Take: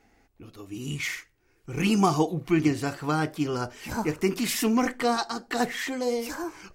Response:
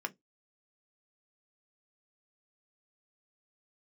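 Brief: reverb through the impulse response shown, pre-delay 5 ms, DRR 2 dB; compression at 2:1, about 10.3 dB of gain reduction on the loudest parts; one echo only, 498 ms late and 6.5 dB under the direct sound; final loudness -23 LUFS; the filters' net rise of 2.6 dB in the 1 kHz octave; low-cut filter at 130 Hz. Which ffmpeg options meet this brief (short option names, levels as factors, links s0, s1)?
-filter_complex "[0:a]highpass=130,equalizer=f=1000:t=o:g=3.5,acompressor=threshold=0.0158:ratio=2,aecho=1:1:498:0.473,asplit=2[s0][s1];[1:a]atrim=start_sample=2205,adelay=5[s2];[s1][s2]afir=irnorm=-1:irlink=0,volume=0.596[s3];[s0][s3]amix=inputs=2:normalize=0,volume=2.99"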